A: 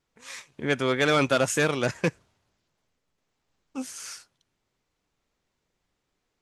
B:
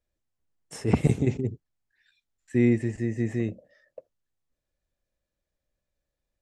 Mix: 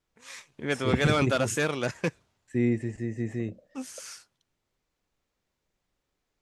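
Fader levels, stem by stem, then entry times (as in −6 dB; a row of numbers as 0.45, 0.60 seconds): −3.5, −4.0 decibels; 0.00, 0.00 seconds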